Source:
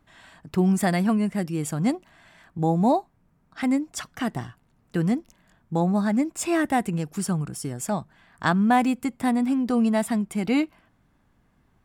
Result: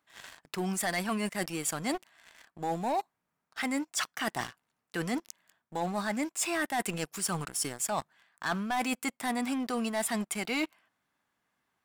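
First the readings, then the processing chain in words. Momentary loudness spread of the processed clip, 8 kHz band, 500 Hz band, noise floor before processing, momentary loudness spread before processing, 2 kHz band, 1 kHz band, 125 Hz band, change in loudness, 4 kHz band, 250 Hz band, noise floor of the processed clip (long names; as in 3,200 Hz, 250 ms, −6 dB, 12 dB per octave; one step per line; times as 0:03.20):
8 LU, +1.5 dB, −7.5 dB, −65 dBFS, 9 LU, −2.0 dB, −6.5 dB, −14.0 dB, −8.0 dB, +1.5 dB, −12.0 dB, −84 dBFS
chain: high-pass filter 1,400 Hz 6 dB per octave
leveller curve on the samples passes 3
reversed playback
downward compressor 6 to 1, threshold −31 dBFS, peak gain reduction 14 dB
reversed playback
level +1.5 dB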